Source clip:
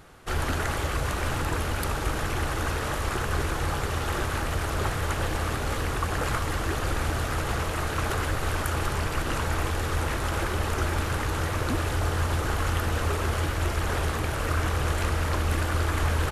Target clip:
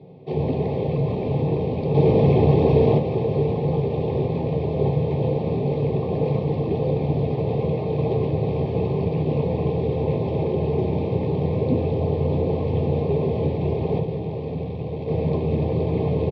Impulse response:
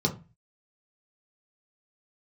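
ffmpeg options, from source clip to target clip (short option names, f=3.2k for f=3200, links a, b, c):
-filter_complex "[0:a]asettb=1/sr,asplit=3[a][b][c];[a]atrim=end=1.944[d];[b]atrim=start=1.94:end=2.98,asetpts=PTS-STARTPTS,afade=t=in:d=0.004:c=qsin,afade=t=out:st=1.036:d=0.004:c=qsin,acontrast=87[e];[c]atrim=start=2.976[f];[d][e]acrossfade=d=0.004:c1=hsin:c2=qsin[g];[g][f]acrossfade=d=0.004:c1=qsin:c2=hsin,asettb=1/sr,asplit=3[h][i][j];[h]atrim=end=13.994[k];[i]atrim=start=13.99:end=15.08,asetpts=PTS-STARTPTS,afade=t=in:d=0.004:c=qsin,afade=t=out:st=1.086:d=0.004:c=qsin,aeval=exprs='(tanh(35.5*val(0)+0.55)-tanh(0.55))/35.5':c=same[l];[j]atrim=start=15.076[m];[k][l]acrossfade=d=0.004:c1=hsin:c2=qsin[n];[n][m]acrossfade=d=0.004:c1=qsin:c2=hsin,asuperstop=centerf=1400:order=4:qfactor=0.96,highpass=120,equalizer=f=170:t=q:w=4:g=4,equalizer=f=310:t=q:w=4:g=-5,equalizer=f=490:t=q:w=4:g=8,equalizer=f=2k:t=q:w=4:g=-5,lowpass=f=2.7k:w=0.5412,lowpass=f=2.7k:w=1.3066,aecho=1:1:609:0.266[o];[1:a]atrim=start_sample=2205[p];[o][p]afir=irnorm=-1:irlink=0,volume=-8dB"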